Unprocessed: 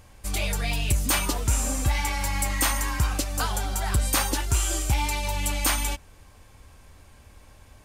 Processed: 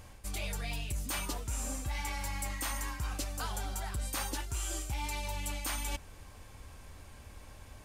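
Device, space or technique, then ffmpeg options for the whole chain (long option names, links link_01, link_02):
compression on the reversed sound: -af "areverse,acompressor=threshold=-34dB:ratio=6,areverse"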